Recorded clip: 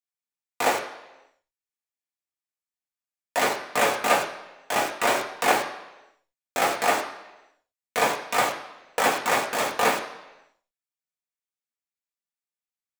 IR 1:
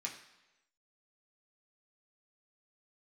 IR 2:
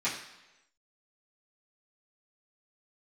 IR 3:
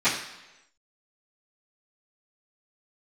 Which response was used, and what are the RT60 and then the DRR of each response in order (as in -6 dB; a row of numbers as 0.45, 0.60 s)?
1; 1.0, 1.0, 1.0 s; -2.0, -12.0, -19.5 dB